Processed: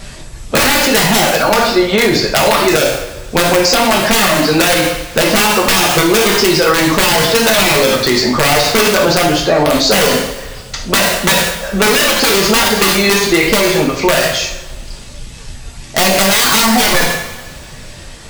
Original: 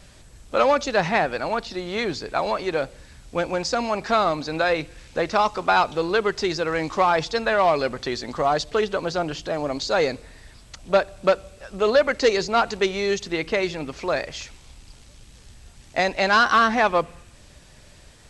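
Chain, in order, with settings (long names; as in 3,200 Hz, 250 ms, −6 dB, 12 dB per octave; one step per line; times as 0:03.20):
wrap-around overflow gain 15 dB
reverb reduction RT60 0.88 s
coupled-rooms reverb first 0.61 s, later 1.8 s, from −17 dB, DRR −2 dB
boost into a limiter +16.5 dB
level −1 dB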